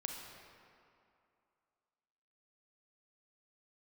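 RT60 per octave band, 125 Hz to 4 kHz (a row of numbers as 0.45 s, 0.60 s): 2.2 s, 2.5 s, 2.5 s, 2.7 s, 2.1 s, 1.6 s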